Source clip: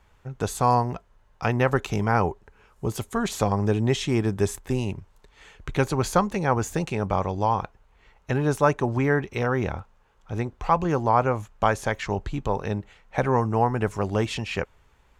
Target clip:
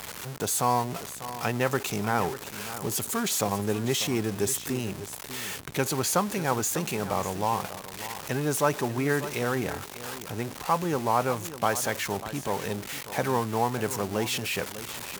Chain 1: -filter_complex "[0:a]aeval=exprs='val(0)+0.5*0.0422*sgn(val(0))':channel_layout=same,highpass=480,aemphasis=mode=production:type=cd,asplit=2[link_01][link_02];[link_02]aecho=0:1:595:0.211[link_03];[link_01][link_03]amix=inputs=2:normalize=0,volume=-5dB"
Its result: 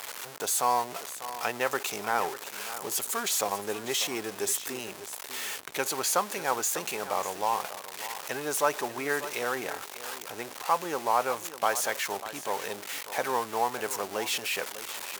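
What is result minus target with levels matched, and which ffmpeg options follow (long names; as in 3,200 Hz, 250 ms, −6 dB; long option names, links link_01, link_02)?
125 Hz band −17.0 dB
-filter_complex "[0:a]aeval=exprs='val(0)+0.5*0.0422*sgn(val(0))':channel_layout=same,highpass=140,aemphasis=mode=production:type=cd,asplit=2[link_01][link_02];[link_02]aecho=0:1:595:0.211[link_03];[link_01][link_03]amix=inputs=2:normalize=0,volume=-5dB"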